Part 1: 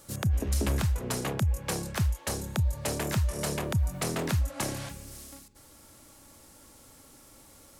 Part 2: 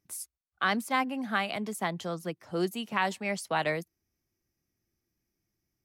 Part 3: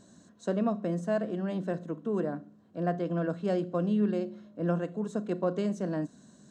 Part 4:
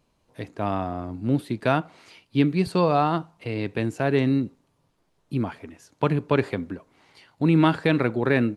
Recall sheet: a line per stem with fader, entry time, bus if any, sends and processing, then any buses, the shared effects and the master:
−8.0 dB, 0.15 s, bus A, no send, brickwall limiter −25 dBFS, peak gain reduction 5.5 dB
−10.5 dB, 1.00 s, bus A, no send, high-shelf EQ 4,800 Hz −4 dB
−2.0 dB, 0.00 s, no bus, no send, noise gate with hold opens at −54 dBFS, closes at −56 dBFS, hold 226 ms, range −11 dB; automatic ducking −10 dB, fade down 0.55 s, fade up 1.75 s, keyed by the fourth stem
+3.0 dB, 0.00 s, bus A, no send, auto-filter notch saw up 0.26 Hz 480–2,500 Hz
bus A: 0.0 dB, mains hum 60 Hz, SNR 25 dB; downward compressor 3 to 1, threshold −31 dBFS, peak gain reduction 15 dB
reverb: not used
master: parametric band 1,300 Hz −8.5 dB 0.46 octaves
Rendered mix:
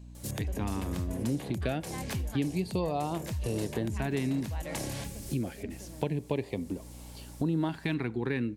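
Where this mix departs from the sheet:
stem 1 −8.0 dB → +1.5 dB
stem 3 −2.0 dB → −8.5 dB

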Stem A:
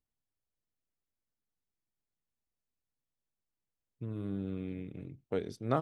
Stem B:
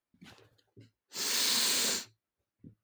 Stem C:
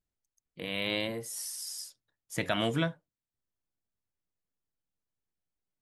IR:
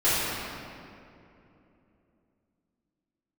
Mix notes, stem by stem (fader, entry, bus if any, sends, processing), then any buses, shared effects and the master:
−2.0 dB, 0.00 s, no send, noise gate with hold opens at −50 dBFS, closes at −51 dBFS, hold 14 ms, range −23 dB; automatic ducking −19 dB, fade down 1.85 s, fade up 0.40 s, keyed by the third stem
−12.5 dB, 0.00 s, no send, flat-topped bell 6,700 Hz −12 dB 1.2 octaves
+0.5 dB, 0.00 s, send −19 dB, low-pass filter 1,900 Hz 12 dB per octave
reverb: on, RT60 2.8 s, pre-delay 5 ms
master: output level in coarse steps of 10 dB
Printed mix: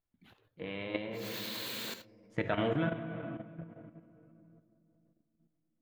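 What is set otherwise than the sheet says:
stem A: muted
stem B −12.5 dB → −4.0 dB

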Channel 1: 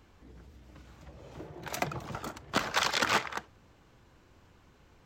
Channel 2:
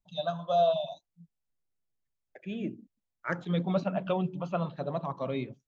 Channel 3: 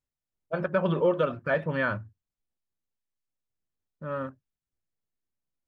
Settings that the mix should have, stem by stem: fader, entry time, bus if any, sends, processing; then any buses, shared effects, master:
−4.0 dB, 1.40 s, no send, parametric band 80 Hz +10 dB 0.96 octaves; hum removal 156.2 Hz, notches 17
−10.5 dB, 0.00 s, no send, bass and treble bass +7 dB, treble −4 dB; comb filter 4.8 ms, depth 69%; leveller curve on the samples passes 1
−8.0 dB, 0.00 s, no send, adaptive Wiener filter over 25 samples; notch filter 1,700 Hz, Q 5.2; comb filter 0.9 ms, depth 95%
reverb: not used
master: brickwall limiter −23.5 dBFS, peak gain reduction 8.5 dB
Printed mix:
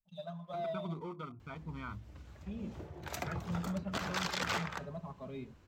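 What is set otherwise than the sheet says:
stem 2 −10.5 dB → −18.5 dB
stem 3 −8.0 dB → −16.5 dB

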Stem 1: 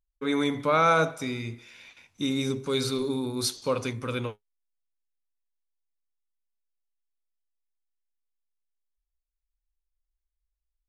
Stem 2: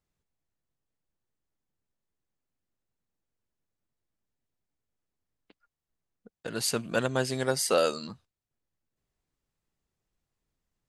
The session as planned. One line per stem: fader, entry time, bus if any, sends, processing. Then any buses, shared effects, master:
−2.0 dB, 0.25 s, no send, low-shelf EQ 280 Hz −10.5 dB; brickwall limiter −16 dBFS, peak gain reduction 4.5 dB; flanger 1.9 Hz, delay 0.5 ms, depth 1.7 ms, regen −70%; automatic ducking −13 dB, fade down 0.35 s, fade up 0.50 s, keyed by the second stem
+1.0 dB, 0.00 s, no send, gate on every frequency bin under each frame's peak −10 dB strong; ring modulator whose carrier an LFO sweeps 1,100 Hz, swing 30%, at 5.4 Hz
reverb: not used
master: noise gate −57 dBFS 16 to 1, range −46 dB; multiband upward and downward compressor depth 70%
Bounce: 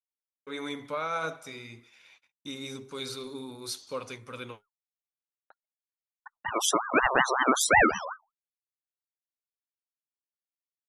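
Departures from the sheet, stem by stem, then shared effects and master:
stem 2 +1.0 dB → +8.5 dB
master: missing multiband upward and downward compressor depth 70%

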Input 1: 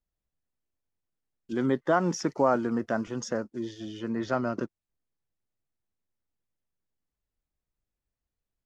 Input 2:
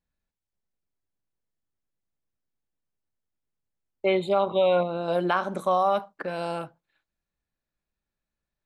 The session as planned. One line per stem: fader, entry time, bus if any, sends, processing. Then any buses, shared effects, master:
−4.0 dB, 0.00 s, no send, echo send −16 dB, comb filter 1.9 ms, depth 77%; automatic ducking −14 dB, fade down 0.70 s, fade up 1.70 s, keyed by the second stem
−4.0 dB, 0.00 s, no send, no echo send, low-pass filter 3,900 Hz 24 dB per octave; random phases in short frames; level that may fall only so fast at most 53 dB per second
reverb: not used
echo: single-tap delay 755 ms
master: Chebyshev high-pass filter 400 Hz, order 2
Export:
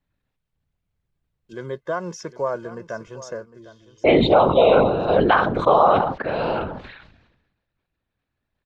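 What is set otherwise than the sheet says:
stem 2 −4.0 dB → +7.0 dB
master: missing Chebyshev high-pass filter 400 Hz, order 2

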